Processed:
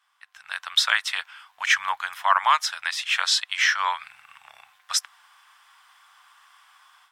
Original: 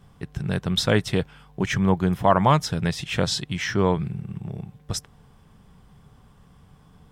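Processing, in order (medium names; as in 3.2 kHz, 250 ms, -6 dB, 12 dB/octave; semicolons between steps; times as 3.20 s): inverse Chebyshev high-pass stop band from 430 Hz, stop band 50 dB; treble shelf 4.6 kHz -6.5 dB; level rider gain up to 14.5 dB; trim -2.5 dB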